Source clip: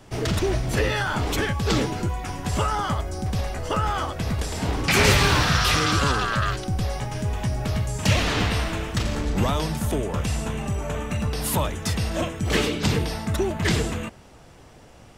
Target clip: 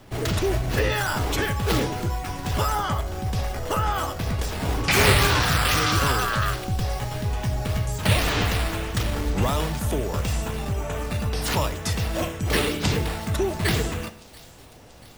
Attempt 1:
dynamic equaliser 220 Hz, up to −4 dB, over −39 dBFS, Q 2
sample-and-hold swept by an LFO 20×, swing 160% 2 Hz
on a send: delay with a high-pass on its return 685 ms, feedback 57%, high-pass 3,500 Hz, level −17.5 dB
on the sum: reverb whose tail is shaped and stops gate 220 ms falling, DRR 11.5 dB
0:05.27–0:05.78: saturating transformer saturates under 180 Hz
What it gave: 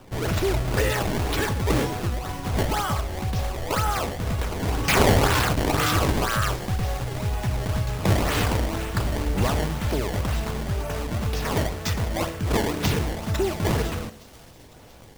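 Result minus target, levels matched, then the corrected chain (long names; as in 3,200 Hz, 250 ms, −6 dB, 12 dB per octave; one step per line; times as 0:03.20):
sample-and-hold swept by an LFO: distortion +7 dB
dynamic equaliser 220 Hz, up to −4 dB, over −39 dBFS, Q 2
sample-and-hold swept by an LFO 4×, swing 160% 2 Hz
on a send: delay with a high-pass on its return 685 ms, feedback 57%, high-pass 3,500 Hz, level −17.5 dB
on the sum: reverb whose tail is shaped and stops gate 220 ms falling, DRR 11.5 dB
0:05.27–0:05.78: saturating transformer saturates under 180 Hz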